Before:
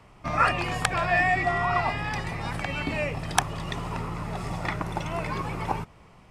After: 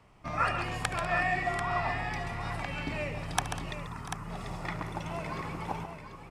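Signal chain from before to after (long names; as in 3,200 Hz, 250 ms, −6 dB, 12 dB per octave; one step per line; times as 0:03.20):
0:03.73–0:04.30: phaser with its sweep stopped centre 1,400 Hz, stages 4
multi-tap delay 73/138/196/690/740 ms −17/−9.5/−17/−19/−9 dB
level −7 dB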